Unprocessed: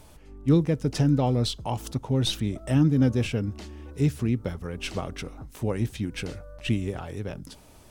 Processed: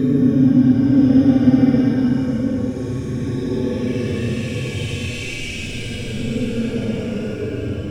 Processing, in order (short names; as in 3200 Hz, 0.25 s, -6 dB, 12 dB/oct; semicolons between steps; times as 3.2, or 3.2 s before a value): Schroeder reverb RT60 0.39 s, combs from 27 ms, DRR -8 dB; Paulstretch 17×, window 0.05 s, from 3; gain -5 dB